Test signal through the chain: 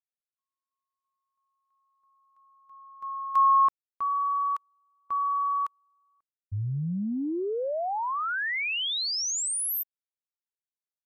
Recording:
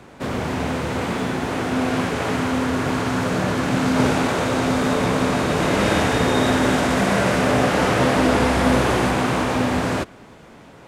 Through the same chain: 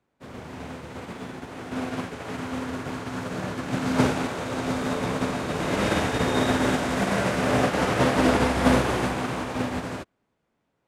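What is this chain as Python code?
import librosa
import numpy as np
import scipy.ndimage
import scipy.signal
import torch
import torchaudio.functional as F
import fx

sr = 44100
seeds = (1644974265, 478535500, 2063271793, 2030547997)

y = fx.upward_expand(x, sr, threshold_db=-35.0, expansion=2.5)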